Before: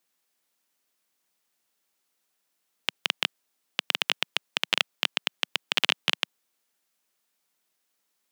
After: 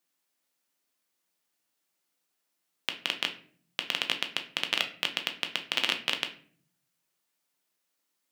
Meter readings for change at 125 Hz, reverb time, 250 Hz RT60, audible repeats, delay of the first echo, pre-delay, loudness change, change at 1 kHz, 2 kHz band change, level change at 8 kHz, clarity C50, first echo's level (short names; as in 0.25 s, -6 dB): -1.5 dB, 0.50 s, 0.90 s, none, none, 3 ms, -3.0 dB, -3.0 dB, -3.0 dB, -3.5 dB, 12.0 dB, none